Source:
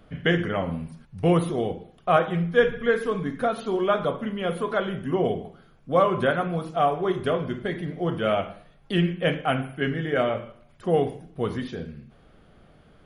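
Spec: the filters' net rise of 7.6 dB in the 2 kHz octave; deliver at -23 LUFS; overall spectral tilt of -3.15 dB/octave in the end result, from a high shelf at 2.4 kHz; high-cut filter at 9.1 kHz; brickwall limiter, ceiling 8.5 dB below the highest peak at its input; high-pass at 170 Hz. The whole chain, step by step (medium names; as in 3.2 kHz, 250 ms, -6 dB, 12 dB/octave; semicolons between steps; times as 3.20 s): high-pass 170 Hz; low-pass 9.1 kHz; peaking EQ 2 kHz +7 dB; treble shelf 2.4 kHz +6.5 dB; trim +2.5 dB; peak limiter -9 dBFS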